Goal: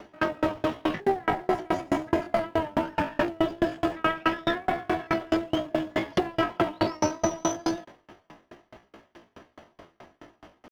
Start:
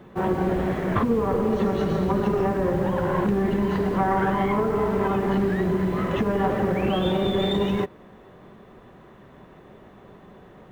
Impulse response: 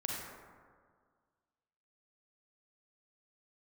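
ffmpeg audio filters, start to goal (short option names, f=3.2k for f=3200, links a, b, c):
-af "asetrate=74167,aresample=44100,atempo=0.594604,aeval=exprs='val(0)*pow(10,-34*if(lt(mod(4.7*n/s,1),2*abs(4.7)/1000),1-mod(4.7*n/s,1)/(2*abs(4.7)/1000),(mod(4.7*n/s,1)-2*abs(4.7)/1000)/(1-2*abs(4.7)/1000))/20)':c=same,volume=4.5dB"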